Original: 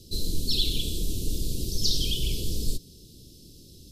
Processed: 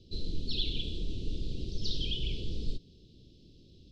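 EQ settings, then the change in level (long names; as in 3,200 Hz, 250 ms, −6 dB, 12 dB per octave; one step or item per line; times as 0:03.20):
transistor ladder low-pass 4,100 Hz, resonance 25%
0.0 dB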